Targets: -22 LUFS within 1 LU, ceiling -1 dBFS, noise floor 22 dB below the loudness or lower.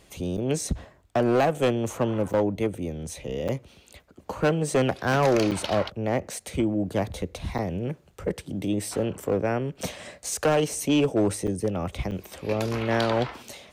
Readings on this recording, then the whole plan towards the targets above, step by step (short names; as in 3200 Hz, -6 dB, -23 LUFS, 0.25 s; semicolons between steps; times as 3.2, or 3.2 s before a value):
clipped 1.2%; flat tops at -16.0 dBFS; dropouts 7; longest dropout 6.8 ms; loudness -26.5 LUFS; peak -16.0 dBFS; loudness target -22.0 LUFS
-> clip repair -16 dBFS; interpolate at 0.37/2.33/3.48/5.51/7.58/11.47/12.11, 6.8 ms; gain +4.5 dB